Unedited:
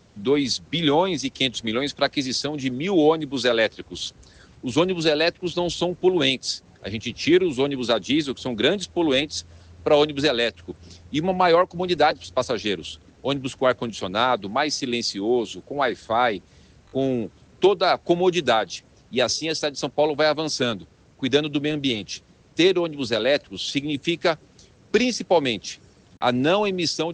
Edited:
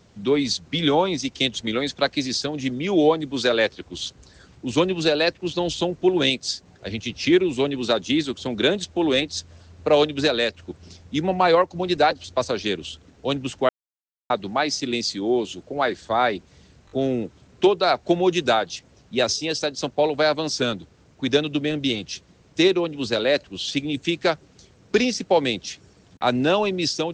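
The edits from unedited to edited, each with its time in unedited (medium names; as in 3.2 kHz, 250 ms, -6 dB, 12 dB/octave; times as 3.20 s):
13.69–14.30 s: mute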